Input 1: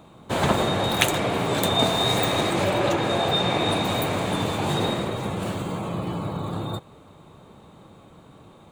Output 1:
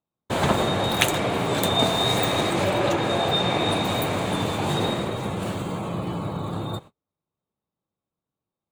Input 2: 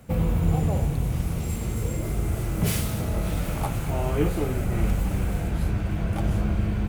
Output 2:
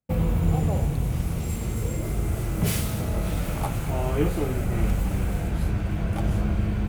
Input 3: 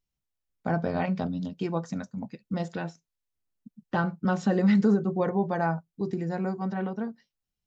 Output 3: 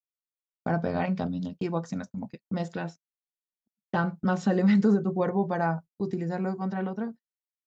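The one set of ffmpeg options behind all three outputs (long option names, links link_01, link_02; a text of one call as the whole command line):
ffmpeg -i in.wav -af "agate=range=-40dB:threshold=-40dB:ratio=16:detection=peak" out.wav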